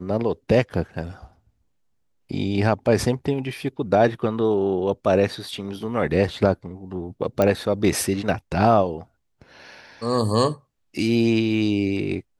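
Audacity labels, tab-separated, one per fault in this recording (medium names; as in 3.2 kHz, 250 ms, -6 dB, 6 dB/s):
7.420000	7.420000	pop -8 dBFS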